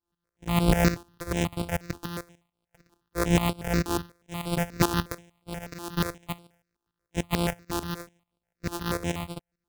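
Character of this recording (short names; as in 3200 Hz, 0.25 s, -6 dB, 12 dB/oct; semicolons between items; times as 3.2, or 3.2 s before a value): a buzz of ramps at a fixed pitch in blocks of 256 samples; tremolo saw up 6.8 Hz, depth 80%; notches that jump at a steady rate 8.3 Hz 570–6300 Hz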